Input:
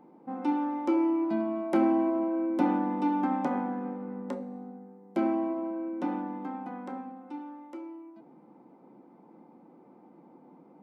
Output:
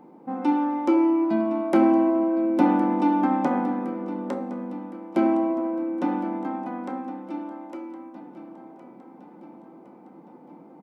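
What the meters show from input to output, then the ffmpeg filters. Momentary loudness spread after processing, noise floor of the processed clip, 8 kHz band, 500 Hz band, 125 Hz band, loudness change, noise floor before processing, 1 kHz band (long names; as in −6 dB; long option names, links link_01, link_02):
17 LU, −49 dBFS, can't be measured, +6.5 dB, +6.0 dB, +6.0 dB, −57 dBFS, +6.0 dB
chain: -af "aecho=1:1:1063|2126|3189|4252|5315:0.178|0.0996|0.0558|0.0312|0.0175,volume=6dB"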